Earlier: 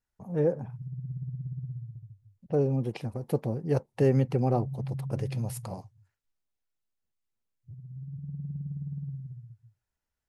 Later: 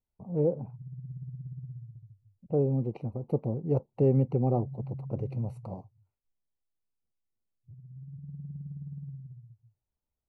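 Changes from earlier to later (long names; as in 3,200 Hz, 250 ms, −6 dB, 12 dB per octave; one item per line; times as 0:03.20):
speech: add moving average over 26 samples
background −4.5 dB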